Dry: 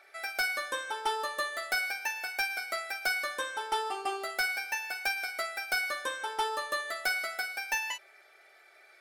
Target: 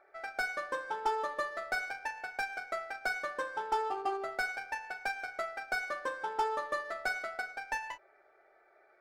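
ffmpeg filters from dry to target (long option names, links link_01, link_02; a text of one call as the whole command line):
ffmpeg -i in.wav -af "equalizer=frequency=3100:width_type=o:width=1.2:gain=-12.5,adynamicsmooth=sensitivity=6.5:basefreq=1700,volume=1.5dB" out.wav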